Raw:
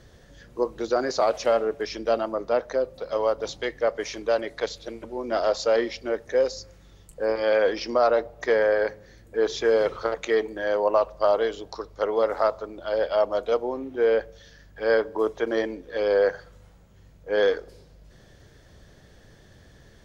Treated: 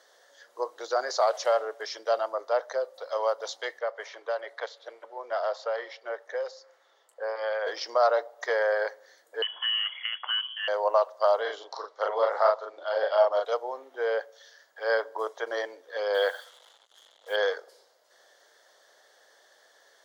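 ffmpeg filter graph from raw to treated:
-filter_complex "[0:a]asettb=1/sr,asplit=3[s0][s1][s2];[s0]atrim=end=3.794[s3];[s1]atrim=start=3.79:end=7.67,asetpts=PTS-STARTPTS,afade=t=in:d=0.004:c=qsin,afade=t=out:st=3.876:d=0.004:c=qsin,acrossover=split=370|3400[s4][s5][s6];[s4]acompressor=threshold=0.00794:ratio=4[s7];[s5]acompressor=threshold=0.0631:ratio=4[s8];[s6]acompressor=threshold=0.00708:ratio=4[s9];[s7][s8][s9]amix=inputs=3:normalize=0,bass=f=250:g=-8,treble=f=4000:g=-12[s10];[s2]atrim=start=7.666[s11];[s3][s10]acrossfade=d=0.004:c1=hsin:c2=qsin[s12];[s12][s11]acrossfade=d=0.004:c1=qsin:c2=hsin,asettb=1/sr,asplit=3[s13][s14][s15];[s13]atrim=end=9.424[s16];[s14]atrim=start=9.42:end=10.68,asetpts=PTS-STARTPTS,afade=t=in:d=0.004:c=qsin,afade=t=out:st=1.256:d=0.004:c=qsin,acompressor=threshold=0.0794:ratio=2.5:attack=3.2:release=140:knee=1:detection=peak,lowpass=f=2900:t=q:w=0.5098,lowpass=f=2900:t=q:w=0.6013,lowpass=f=2900:t=q:w=0.9,lowpass=f=2900:t=q:w=2.563,afreqshift=-3400[s17];[s15]atrim=start=10.676[s18];[s16][s17]acrossfade=d=0.004:c1=hsin:c2=qsin[s19];[s19][s18]acrossfade=d=0.004:c1=qsin:c2=hsin,asettb=1/sr,asplit=3[s20][s21][s22];[s20]atrim=end=11.414[s23];[s21]atrim=start=11.41:end=13.45,asetpts=PTS-STARTPTS,afade=t=in:d=0.004:c=qsin,afade=t=out:st=2.036:d=0.004:c=qsin,highpass=140,lowpass=4900,asplit=2[s24][s25];[s25]adelay=39,volume=0.794[s26];[s24][s26]amix=inputs=2:normalize=0,atrim=end_sample=89964[s27];[s22]atrim=start=13.446[s28];[s23][s27]acrossfade=d=0.004:c1=hsin:c2=qsin[s29];[s29][s28]acrossfade=d=0.004:c1=qsin:c2=hsin,asettb=1/sr,asplit=3[s30][s31][s32];[s30]atrim=end=16.144[s33];[s31]atrim=start=16.14:end=17.36,asetpts=PTS-STARTPTS,afade=t=in:d=0.004:c=qsin,afade=t=out:st=1.216:d=0.004:c=qsin,lowpass=f=3400:t=q:w=9.5,acrusher=bits=7:mix=0:aa=0.5[s34];[s32]atrim=start=17.356[s35];[s33][s34]acrossfade=d=0.004:c1=hsin:c2=qsin[s36];[s36][s35]acrossfade=d=0.004:c1=qsin:c2=hsin,highpass=f=570:w=0.5412,highpass=f=570:w=1.3066,equalizer=f=2500:w=4.6:g=-12"

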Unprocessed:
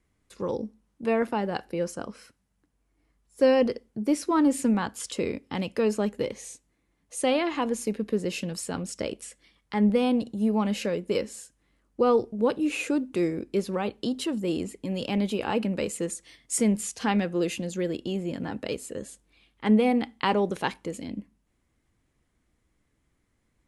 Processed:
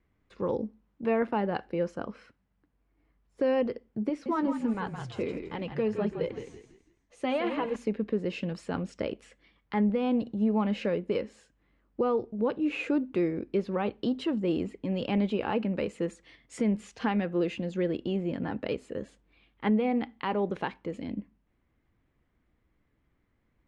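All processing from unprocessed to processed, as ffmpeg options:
-filter_complex "[0:a]asettb=1/sr,asplit=3[s0][s1][s2];[s0]atrim=end=4.094[s3];[s1]atrim=start=4.09:end=7.76,asetpts=PTS-STARTPTS,afade=t=in:d=0.004:c=qsin,afade=t=out:st=3.666:d=0.004:c=qsin,asplit=5[s4][s5][s6][s7][s8];[s5]adelay=166,afreqshift=-42,volume=0.398[s9];[s6]adelay=332,afreqshift=-84,volume=0.14[s10];[s7]adelay=498,afreqshift=-126,volume=0.049[s11];[s8]adelay=664,afreqshift=-168,volume=0.017[s12];[s4][s9][s10][s11][s12]amix=inputs=5:normalize=0,atrim=end_sample=161847,flanger=delay=1.9:depth=6.9:regen=-33:speed=1.4:shape=sinusoidal[s13];[s2]atrim=start=7.756[s14];[s3][s13]acrossfade=d=0.004:c1=hsin:c2=qsin[s15];[s15][s14]acrossfade=d=0.004:c1=qsin:c2=hsin,lowpass=2700,alimiter=limit=0.119:level=0:latency=1:release=357"

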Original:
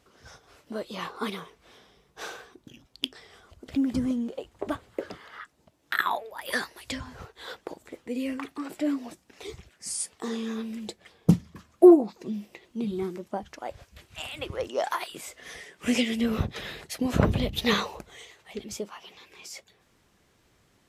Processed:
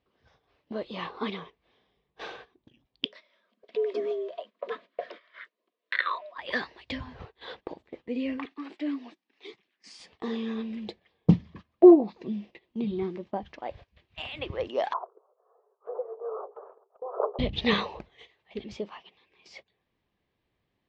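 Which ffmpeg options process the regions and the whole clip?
-filter_complex "[0:a]asettb=1/sr,asplit=3[s0][s1][s2];[s0]atrim=end=3.054[s3];[s1]atrim=start=3.05:end=6.38,asetpts=PTS-STARTPTS,afade=t=in:d=0.004:c=qsin,afade=t=out:st=3.326:d=0.004:c=qsin,equalizer=f=80:t=o:w=2.1:g=-12,afreqshift=160,asuperstop=centerf=820:order=8:qfactor=4[s4];[s2]atrim=start=6.376[s5];[s3][s4]acrossfade=d=0.004:c1=hsin:c2=qsin[s6];[s6][s5]acrossfade=d=0.004:c1=qsin:c2=hsin,asettb=1/sr,asplit=3[s7][s8][s9];[s7]atrim=end=8.454[s10];[s8]atrim=start=8.45:end=10,asetpts=PTS-STARTPTS,afade=t=in:d=0.004:c=qsin,afade=t=out:st=1.546:d=0.004:c=qsin,highpass=f=250:w=0.5412,highpass=f=250:w=1.3066,equalizer=f=570:w=1.1:g=-9[s11];[s9]atrim=start=9.996[s12];[s10][s11]acrossfade=d=0.004:c1=hsin:c2=qsin[s13];[s13][s12]acrossfade=d=0.004:c1=qsin:c2=hsin,asettb=1/sr,asplit=3[s14][s15][s16];[s14]atrim=end=14.934[s17];[s15]atrim=start=14.93:end=17.39,asetpts=PTS-STARTPTS,afade=t=in:d=0.004:c=qsin,afade=t=out:st=2.456:d=0.004:c=qsin,asuperpass=centerf=730:order=20:qfactor=0.75,bandreject=f=60:t=h:w=6,bandreject=f=120:t=h:w=6,bandreject=f=180:t=h:w=6,bandreject=f=240:t=h:w=6,bandreject=f=300:t=h:w=6,bandreject=f=360:t=h:w=6,bandreject=f=420:t=h:w=6,bandreject=f=480:t=h:w=6,bandreject=f=540:t=h:w=6[s18];[s16]atrim=start=17.386[s19];[s17][s18]acrossfade=d=0.004:c1=hsin:c2=qsin[s20];[s20][s19]acrossfade=d=0.004:c1=qsin:c2=hsin,agate=range=0.224:threshold=0.00562:ratio=16:detection=peak,lowpass=f=4000:w=0.5412,lowpass=f=4000:w=1.3066,equalizer=f=1400:w=7.1:g=-10"

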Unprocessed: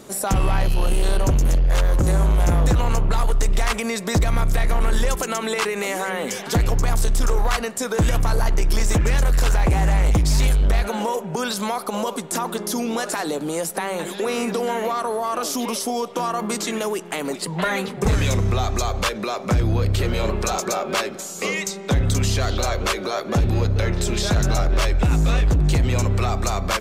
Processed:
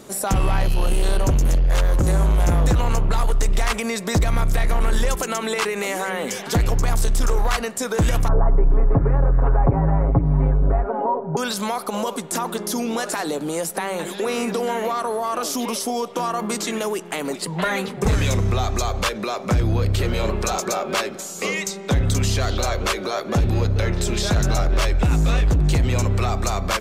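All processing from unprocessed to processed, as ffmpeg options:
-filter_complex "[0:a]asettb=1/sr,asplit=3[s0][s1][s2];[s0]atrim=end=8.284[s3];[s1]atrim=start=8.28:end=11.37,asetpts=PTS-STARTPTS,afade=t=in:d=0.004:c=qsin,afade=t=out:st=3.086:d=0.004:c=qsin,lowpass=f=1200:w=0.5412,lowpass=f=1200:w=1.3066,aecho=1:1:7.3:0.9,atrim=end_sample=136269[s4];[s2]atrim=start=11.366[s5];[s3][s4]acrossfade=d=0.004:c1=hsin:c2=qsin[s6];[s6][s5]acrossfade=d=0.004:c1=qsin:c2=hsin"

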